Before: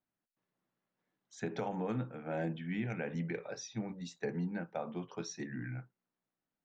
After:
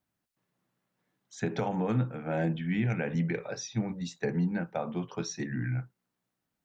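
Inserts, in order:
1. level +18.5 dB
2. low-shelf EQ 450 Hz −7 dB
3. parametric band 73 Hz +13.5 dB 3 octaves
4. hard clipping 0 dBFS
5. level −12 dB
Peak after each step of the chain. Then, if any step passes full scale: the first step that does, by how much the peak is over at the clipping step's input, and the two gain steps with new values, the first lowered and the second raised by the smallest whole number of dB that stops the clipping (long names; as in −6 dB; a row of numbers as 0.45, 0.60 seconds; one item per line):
−7.0, −9.5, −6.0, −6.0, −18.0 dBFS
no step passes full scale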